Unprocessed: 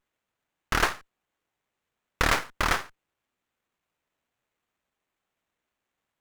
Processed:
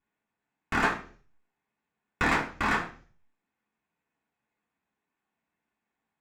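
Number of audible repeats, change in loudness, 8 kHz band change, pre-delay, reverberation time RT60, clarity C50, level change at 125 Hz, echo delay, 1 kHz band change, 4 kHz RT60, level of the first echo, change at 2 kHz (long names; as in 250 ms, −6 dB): no echo audible, −1.5 dB, −10.0 dB, 3 ms, 0.45 s, 12.0 dB, −2.5 dB, no echo audible, −0.5 dB, 0.55 s, no echo audible, −0.5 dB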